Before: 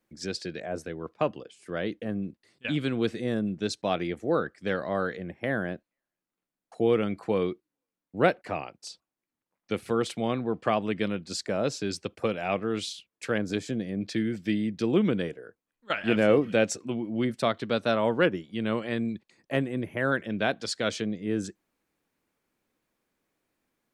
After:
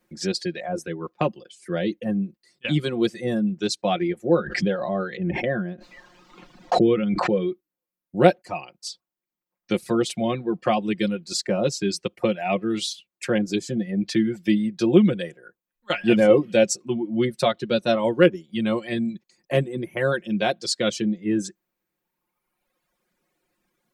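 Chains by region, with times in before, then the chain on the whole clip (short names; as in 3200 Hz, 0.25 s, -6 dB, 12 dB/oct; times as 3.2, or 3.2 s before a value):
4.29–7.52 air absorption 180 m + backwards sustainer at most 20 dB/s
whole clip: reverb removal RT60 1.6 s; comb 5.6 ms, depth 71%; dynamic EQ 1400 Hz, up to -7 dB, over -41 dBFS, Q 0.88; gain +6 dB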